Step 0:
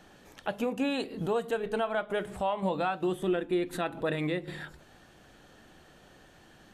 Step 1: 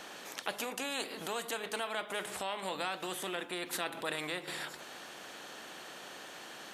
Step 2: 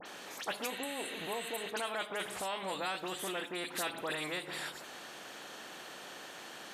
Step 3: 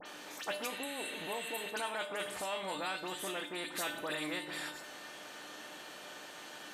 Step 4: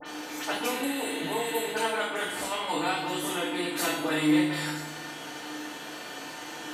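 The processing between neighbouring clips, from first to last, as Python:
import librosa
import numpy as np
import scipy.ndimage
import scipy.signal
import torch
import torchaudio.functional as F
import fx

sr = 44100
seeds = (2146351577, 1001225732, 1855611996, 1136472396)

y1 = scipy.signal.sosfilt(scipy.signal.butter(2, 430.0, 'highpass', fs=sr, output='sos'), x)
y1 = fx.spectral_comp(y1, sr, ratio=2.0)
y2 = fx.dispersion(y1, sr, late='highs', ms=60.0, hz=2700.0)
y2 = fx.spec_repair(y2, sr, seeds[0], start_s=0.73, length_s=0.91, low_hz=1100.0, high_hz=7500.0, source='after')
y3 = fx.comb_fb(y2, sr, f0_hz=300.0, decay_s=0.54, harmonics='all', damping=0.0, mix_pct=80)
y3 = F.gain(torch.from_numpy(y3), 11.0).numpy()
y4 = fx.rev_fdn(y3, sr, rt60_s=0.76, lf_ratio=1.45, hf_ratio=0.75, size_ms=20.0, drr_db=-8.5)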